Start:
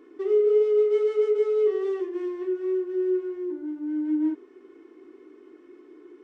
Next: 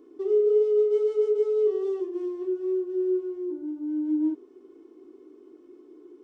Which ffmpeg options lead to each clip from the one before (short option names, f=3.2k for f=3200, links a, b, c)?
-af "equalizer=f=1.9k:w=1.1:g=-15"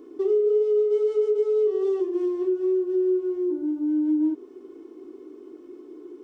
-af "acompressor=threshold=-28dB:ratio=3,volume=7dB"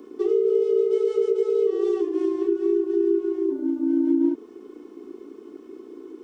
-filter_complex "[0:a]acrossover=split=570|1000[a][b][c];[a]aeval=exprs='val(0)*sin(2*PI*29*n/s)':c=same[d];[b]alimiter=level_in=14.5dB:limit=-24dB:level=0:latency=1,volume=-14.5dB[e];[d][e][c]amix=inputs=3:normalize=0,volume=5.5dB"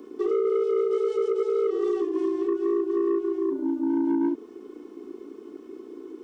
-af "asoftclip=type=tanh:threshold=-18.5dB"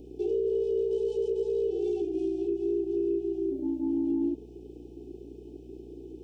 -af "aeval=exprs='val(0)+0.00501*(sin(2*PI*60*n/s)+sin(2*PI*2*60*n/s)/2+sin(2*PI*3*60*n/s)/3+sin(2*PI*4*60*n/s)/4+sin(2*PI*5*60*n/s)/5)':c=same,afftfilt=real='re*(1-between(b*sr/4096,880,2300))':imag='im*(1-between(b*sr/4096,880,2300))':win_size=4096:overlap=0.75,volume=-4dB"